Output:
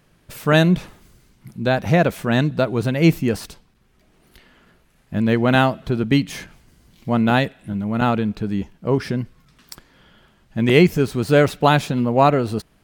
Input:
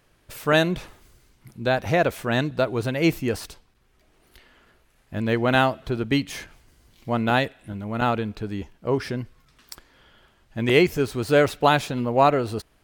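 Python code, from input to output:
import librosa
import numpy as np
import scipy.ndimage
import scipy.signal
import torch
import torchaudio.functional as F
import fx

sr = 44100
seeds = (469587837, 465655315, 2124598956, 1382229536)

y = fx.peak_eq(x, sr, hz=180.0, db=9.5, octaves=0.88)
y = y * 10.0 ** (2.0 / 20.0)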